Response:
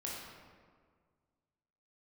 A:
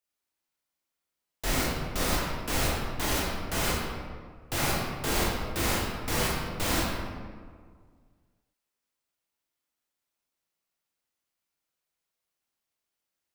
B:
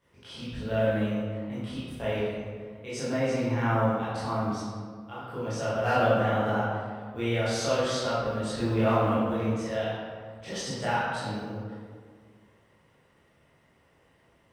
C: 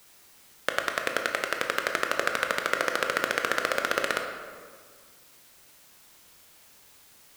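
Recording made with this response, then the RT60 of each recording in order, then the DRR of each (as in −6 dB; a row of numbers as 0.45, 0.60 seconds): A; 1.8, 1.8, 1.8 seconds; −4.5, −12.5, 3.5 decibels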